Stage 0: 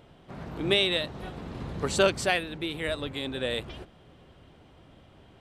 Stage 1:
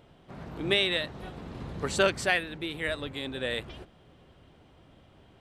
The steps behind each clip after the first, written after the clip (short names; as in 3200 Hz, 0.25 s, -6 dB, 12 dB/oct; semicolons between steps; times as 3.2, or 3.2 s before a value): dynamic EQ 1800 Hz, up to +6 dB, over -42 dBFS, Q 2; gain -2.5 dB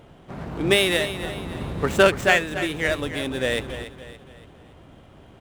median filter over 9 samples; feedback echo 0.285 s, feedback 42%, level -12 dB; gain +8.5 dB